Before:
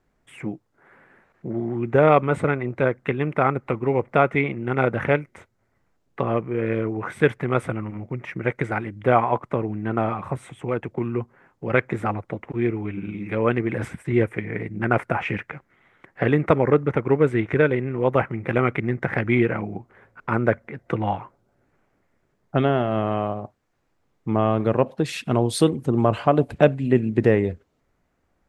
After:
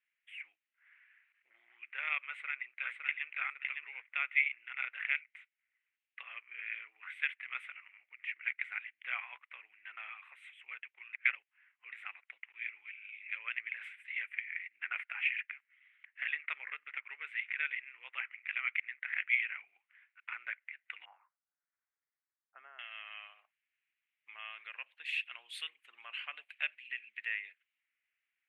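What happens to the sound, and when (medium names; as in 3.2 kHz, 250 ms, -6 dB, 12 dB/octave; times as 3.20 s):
2.22–3.29 s: echo throw 560 ms, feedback 15%, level -3.5 dB
11.13–11.92 s: reverse
21.05–22.79 s: low-pass 1.2 kHz 24 dB/octave
whole clip: Chebyshev high-pass 2 kHz, order 3; resonant high shelf 3.9 kHz -13 dB, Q 3; trim -8 dB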